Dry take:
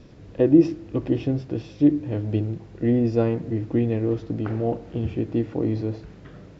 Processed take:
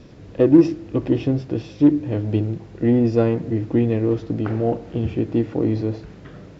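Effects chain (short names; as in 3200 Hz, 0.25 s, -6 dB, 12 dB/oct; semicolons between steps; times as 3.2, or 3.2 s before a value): low shelf 63 Hz -4.5 dB; in parallel at -11 dB: hard clip -17.5 dBFS, distortion -9 dB; on the sum: gain +2 dB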